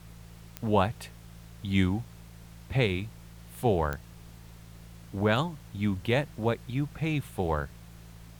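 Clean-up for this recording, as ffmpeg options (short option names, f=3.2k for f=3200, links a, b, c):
-af "adeclick=t=4,bandreject=f=56.2:t=h:w=4,bandreject=f=112.4:t=h:w=4,bandreject=f=168.6:t=h:w=4,afftdn=nr=25:nf=-49"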